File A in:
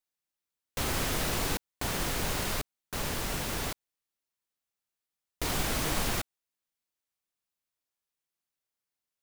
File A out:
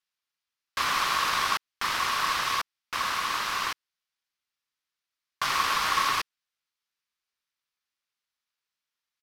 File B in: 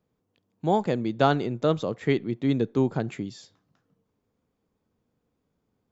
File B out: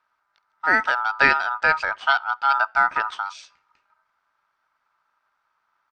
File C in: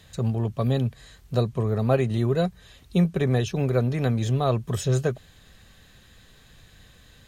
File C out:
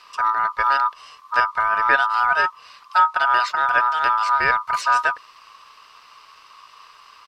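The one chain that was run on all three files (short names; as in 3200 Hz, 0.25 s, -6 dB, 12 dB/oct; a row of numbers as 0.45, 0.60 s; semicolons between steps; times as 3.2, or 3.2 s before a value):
downsampling 32000 Hz; ring modulator 1100 Hz; band shelf 2400 Hz +10 dB 2.8 oct; gain -1 dB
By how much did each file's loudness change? +5.0, +5.5, +6.0 LU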